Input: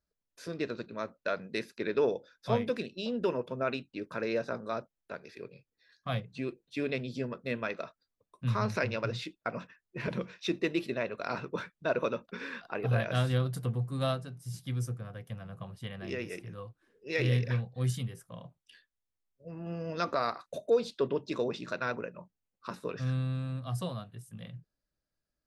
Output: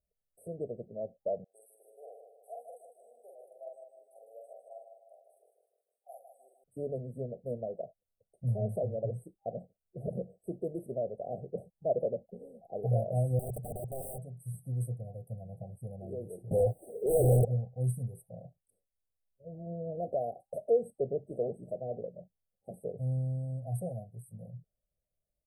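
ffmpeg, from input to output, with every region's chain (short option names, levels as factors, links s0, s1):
-filter_complex "[0:a]asettb=1/sr,asplit=3[s0][s1][s2];[s0]atrim=end=1.444[s3];[s1]atrim=start=1.44:end=6.64,asetpts=PTS-STARTPTS,afade=t=in:d=0.004:c=qsin,afade=t=out:st=5.196:d=0.004:c=qsin,highpass=f=980:w=0.5412,highpass=f=980:w=1.3066,asplit=2[s4][s5];[s5]adelay=46,volume=0.794[s6];[s4][s6]amix=inputs=2:normalize=0,atrim=end_sample=229320,aecho=1:1:153|306|459|612|765|918:0.447|0.21|0.0987|0.0464|0.0218|0.0102,atrim=end_sample=229320[s7];[s2]atrim=start=6.636[s8];[s3][s7]acrossfade=d=0.004:c1=hsin:c2=qsin[s9];[s9][s8]acrossfade=d=0.004:c1=qsin:c2=hsin,asettb=1/sr,asplit=3[s10][s11][s12];[s10]atrim=end=13.394[s13];[s11]atrim=start=13.39:end=14.18,asetpts=PTS-STARTPTS,afade=t=in:d=0.004:c=qsin,afade=t=out:st=0.786:d=0.004:c=qsin,asuperstop=centerf=2500:order=8:qfactor=4.1,highshelf=f=4200:g=-8.5,aeval=exprs='(mod(37.6*val(0)+1,2)-1)/37.6':c=same[s14];[s12]atrim=start=14.176[s15];[s13][s14]acrossfade=d=0.004:c1=hsin:c2=qsin[s16];[s16][s15]acrossfade=d=0.004:c1=qsin:c2=hsin,asettb=1/sr,asplit=3[s17][s18][s19];[s17]atrim=end=16.514[s20];[s18]atrim=start=16.51:end=17.45,asetpts=PTS-STARTPTS,afade=t=in:d=0.004:c=qsin,afade=t=out:st=0.936:d=0.004:c=qsin,aeval=exprs='0.141*sin(PI/2*1.58*val(0)/0.141)':c=same,asplit=2[s21][s22];[s22]highpass=f=720:p=1,volume=39.8,asoftclip=type=tanh:threshold=0.141[s23];[s21][s23]amix=inputs=2:normalize=0,lowpass=f=7900:p=1,volume=0.501[s24];[s19]atrim=start=17.446[s25];[s20][s24]acrossfade=d=0.004:c1=hsin:c2=qsin[s26];[s26][s25]acrossfade=d=0.004:c1=qsin:c2=hsin,afftfilt=real='re*(1-between(b*sr/4096,800,7900))':imag='im*(1-between(b*sr/4096,800,7900))':win_size=4096:overlap=0.75,aecho=1:1:1.7:0.63,volume=0.75"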